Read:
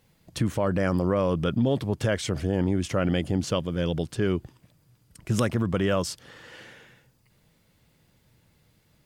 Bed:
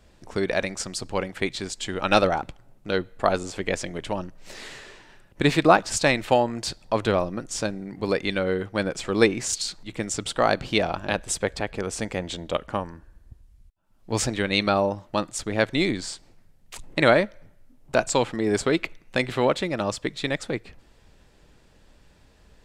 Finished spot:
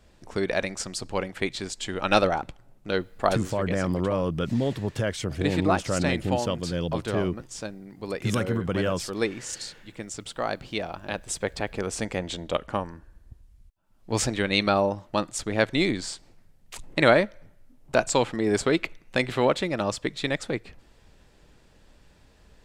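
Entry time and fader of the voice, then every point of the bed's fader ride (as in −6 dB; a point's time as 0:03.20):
2.95 s, −2.0 dB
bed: 0:03.29 −1.5 dB
0:03.65 −8 dB
0:10.92 −8 dB
0:11.71 −0.5 dB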